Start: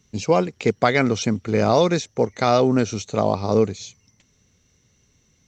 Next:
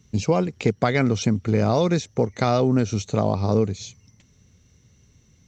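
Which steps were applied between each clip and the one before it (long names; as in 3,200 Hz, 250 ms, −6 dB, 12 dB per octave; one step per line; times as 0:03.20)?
parametric band 90 Hz +8.5 dB 2.9 octaves
downward compressor 2 to 1, threshold −19 dBFS, peak gain reduction 6.5 dB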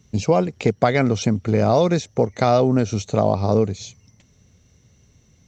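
parametric band 650 Hz +5 dB 0.81 octaves
level +1 dB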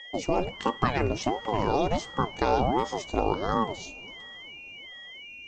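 coupled-rooms reverb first 0.28 s, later 4.4 s, from −18 dB, DRR 13.5 dB
steady tone 2,600 Hz −33 dBFS
ring modulator whose carrier an LFO sweeps 420 Hz, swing 65%, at 1.4 Hz
level −5.5 dB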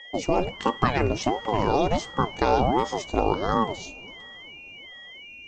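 one half of a high-frequency compander decoder only
level +3 dB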